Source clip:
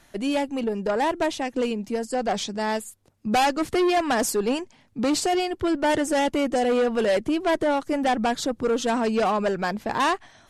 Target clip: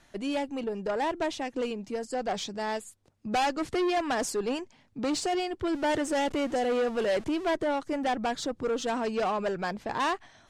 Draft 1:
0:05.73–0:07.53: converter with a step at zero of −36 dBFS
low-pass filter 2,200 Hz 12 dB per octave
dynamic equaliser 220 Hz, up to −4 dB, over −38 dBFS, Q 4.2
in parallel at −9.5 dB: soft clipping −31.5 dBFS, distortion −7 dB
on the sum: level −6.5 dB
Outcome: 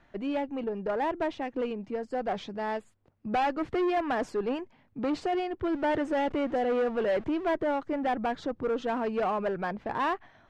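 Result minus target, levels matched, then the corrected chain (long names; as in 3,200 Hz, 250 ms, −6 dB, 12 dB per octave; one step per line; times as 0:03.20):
8,000 Hz band −17.5 dB
0:05.73–0:07.53: converter with a step at zero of −36 dBFS
low-pass filter 8,500 Hz 12 dB per octave
dynamic equaliser 220 Hz, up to −4 dB, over −38 dBFS, Q 4.2
in parallel at −9.5 dB: soft clipping −31.5 dBFS, distortion −6 dB
on the sum: level −6.5 dB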